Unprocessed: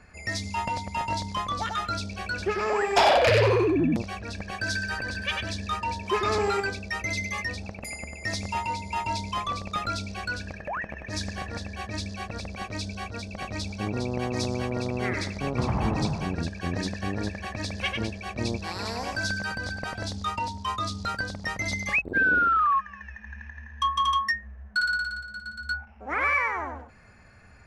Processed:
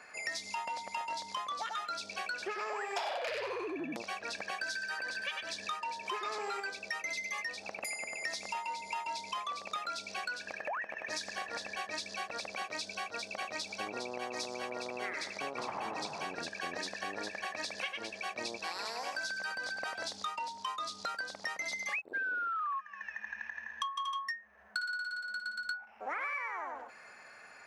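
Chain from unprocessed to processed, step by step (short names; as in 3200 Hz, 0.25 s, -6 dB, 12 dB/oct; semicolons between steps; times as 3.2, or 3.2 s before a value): HPF 570 Hz 12 dB/oct; compressor 6:1, threshold -40 dBFS, peak gain reduction 21 dB; gain +4 dB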